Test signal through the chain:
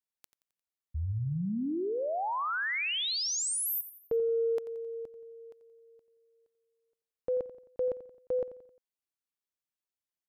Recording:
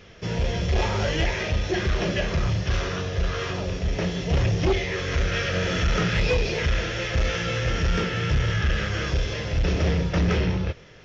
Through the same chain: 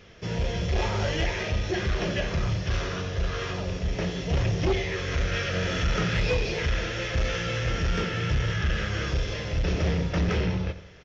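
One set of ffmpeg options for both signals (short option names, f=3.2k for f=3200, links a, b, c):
-af "acontrast=29,aecho=1:1:88|176|264|352:0.2|0.0898|0.0404|0.0182,volume=-8dB"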